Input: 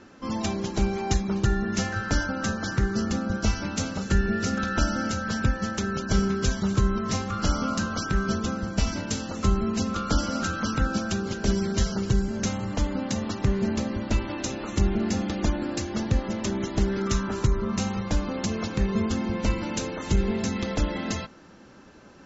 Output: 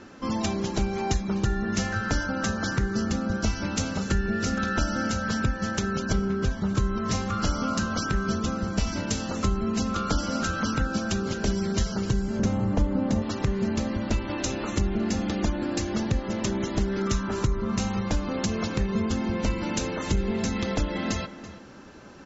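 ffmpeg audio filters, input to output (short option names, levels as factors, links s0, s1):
-filter_complex "[0:a]asettb=1/sr,asplit=3[s0][s1][s2];[s0]atrim=end=6.134[s3];[s1]atrim=start=6.13:end=6.75,asetpts=PTS-STARTPTS,afade=t=in:d=0.004:c=qsin,afade=t=out:st=0.616:d=0.004:c=qsin,lowpass=f=1900:p=1[s4];[s2]atrim=start=6.746[s5];[s3][s4]acrossfade=d=0.004:c1=hsin:c2=qsin[s6];[s6][s5]acrossfade=d=0.004:c1=qsin:c2=hsin,asettb=1/sr,asplit=3[s7][s8][s9];[s7]atrim=end=12.394[s10];[s8]atrim=start=12.39:end=13.22,asetpts=PTS-STARTPTS,afade=t=in:d=0.004:c=qsin,afade=t=out:st=0.826:d=0.004:c=qsin,tiltshelf=f=1400:g=7[s11];[s9]atrim=start=13.216[s12];[s10][s11]acrossfade=d=0.004:c1=hsin:c2=qsin[s13];[s13][s12]acrossfade=d=0.004:c1=qsin:c2=hsin,asplit=2[s14][s15];[s15]adelay=332.4,volume=0.158,highshelf=f=4000:g=-7.48[s16];[s14][s16]amix=inputs=2:normalize=0,acompressor=threshold=0.0355:ratio=2,volume=1.5"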